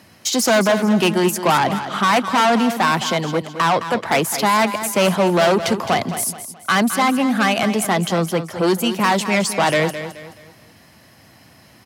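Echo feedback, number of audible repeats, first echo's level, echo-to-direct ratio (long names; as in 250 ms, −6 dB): 36%, 3, −11.0 dB, −10.5 dB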